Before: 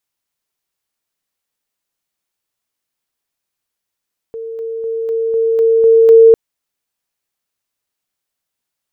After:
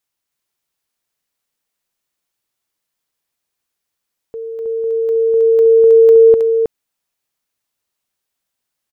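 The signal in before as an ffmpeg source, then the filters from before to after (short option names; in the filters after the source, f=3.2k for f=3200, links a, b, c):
-f lavfi -i "aevalsrc='pow(10,(-23+3*floor(t/0.25))/20)*sin(2*PI*453*t)':d=2:s=44100"
-filter_complex "[0:a]acompressor=threshold=-9dB:ratio=6,asplit=2[a][b];[b]aecho=0:1:318:0.668[c];[a][c]amix=inputs=2:normalize=0"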